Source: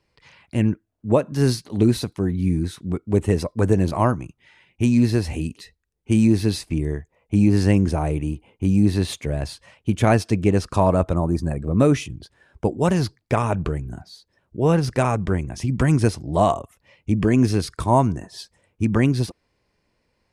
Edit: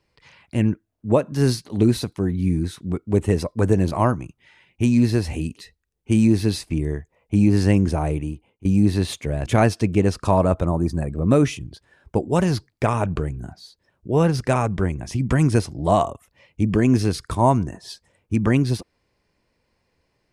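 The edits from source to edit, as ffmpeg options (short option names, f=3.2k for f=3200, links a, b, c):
-filter_complex "[0:a]asplit=3[a][b][c];[a]atrim=end=8.65,asetpts=PTS-STARTPTS,afade=t=out:st=8.12:d=0.53:silence=0.0944061[d];[b]atrim=start=8.65:end=9.462,asetpts=PTS-STARTPTS,afade=t=in:d=0.004:c=hsin:silence=0.0944061[e];[c]atrim=start=9.948[f];[d][e]concat=n=2:v=0:a=1[g];[g][f]acrossfade=d=0.004:c1=hsin:c2=hsin"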